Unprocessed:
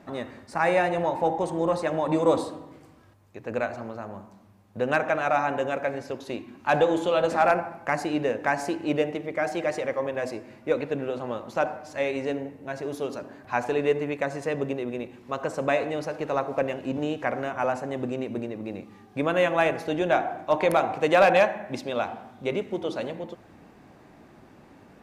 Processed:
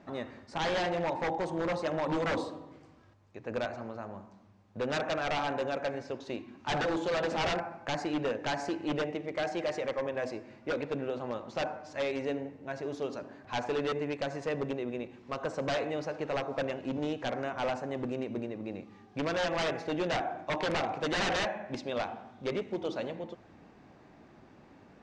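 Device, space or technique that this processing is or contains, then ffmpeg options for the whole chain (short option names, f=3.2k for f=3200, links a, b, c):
synthesiser wavefolder: -af "aeval=exprs='0.0944*(abs(mod(val(0)/0.0944+3,4)-2)-1)':c=same,lowpass=f=6.8k:w=0.5412,lowpass=f=6.8k:w=1.3066,volume=-4.5dB"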